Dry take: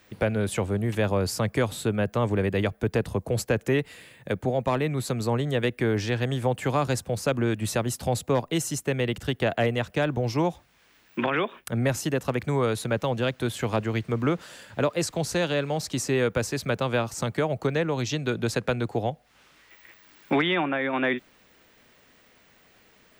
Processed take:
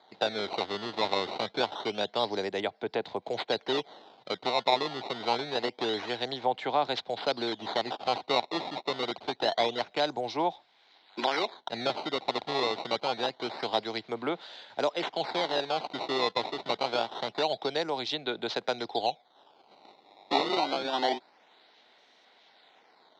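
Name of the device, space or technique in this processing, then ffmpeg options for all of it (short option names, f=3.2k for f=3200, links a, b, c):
circuit-bent sampling toy: -af "acrusher=samples=16:mix=1:aa=0.000001:lfo=1:lforange=25.6:lforate=0.26,highpass=510,equalizer=f=520:t=q:w=4:g=-5,equalizer=f=790:t=q:w=4:g=5,equalizer=f=1.2k:t=q:w=4:g=-8,equalizer=f=1.7k:t=q:w=4:g=-7,equalizer=f=2.6k:t=q:w=4:g=-7,equalizer=f=3.9k:t=q:w=4:g=9,lowpass=f=4.2k:w=0.5412,lowpass=f=4.2k:w=1.3066,volume=1.5dB"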